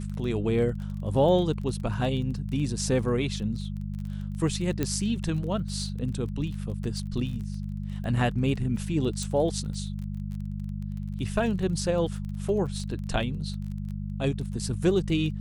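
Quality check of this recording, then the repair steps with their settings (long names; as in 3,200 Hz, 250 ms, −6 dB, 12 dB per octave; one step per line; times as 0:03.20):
surface crackle 21 per second −35 dBFS
mains hum 50 Hz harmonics 4 −33 dBFS
0:04.83: click −13 dBFS
0:09.23: click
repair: click removal
hum removal 50 Hz, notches 4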